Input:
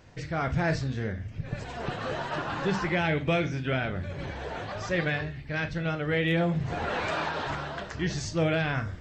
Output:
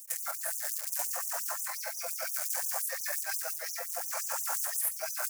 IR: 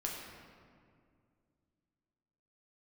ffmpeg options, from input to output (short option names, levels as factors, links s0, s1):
-filter_complex "[0:a]equalizer=f=85:w=0.66:g=-9,aecho=1:1:108|216|324:0.075|0.0352|0.0166,acrossover=split=580|2300[s0][s1][s2];[s2]aeval=exprs='abs(val(0))':c=same[s3];[s0][s1][s3]amix=inputs=3:normalize=0[s4];[1:a]atrim=start_sample=2205,asetrate=79380,aresample=44100[s5];[s4][s5]afir=irnorm=-1:irlink=0,acontrast=60,equalizer=f=260:w=5.8:g=-11.5,acrusher=bits=8:dc=4:mix=0:aa=0.000001,areverse,acompressor=threshold=0.02:ratio=12,areverse,atempo=1.7,aexciter=amount=7.9:drive=5.2:freq=5300,afftfilt=real='re*gte(b*sr/1024,500*pow(5900/500,0.5+0.5*sin(2*PI*5.7*pts/sr)))':imag='im*gte(b*sr/1024,500*pow(5900/500,0.5+0.5*sin(2*PI*5.7*pts/sr)))':win_size=1024:overlap=0.75,volume=1.68"